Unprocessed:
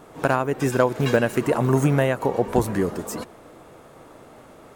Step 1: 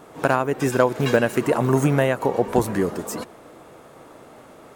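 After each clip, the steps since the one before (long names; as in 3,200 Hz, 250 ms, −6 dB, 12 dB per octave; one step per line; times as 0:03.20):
low-shelf EQ 82 Hz −8.5 dB
level +1.5 dB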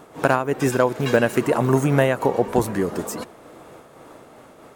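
amplitude modulation by smooth noise, depth 50%
level +3 dB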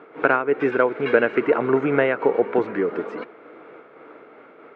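loudspeaker in its box 210–3,100 Hz, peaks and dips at 310 Hz +5 dB, 440 Hz +9 dB, 1,400 Hz +10 dB, 2,200 Hz +9 dB
level −4.5 dB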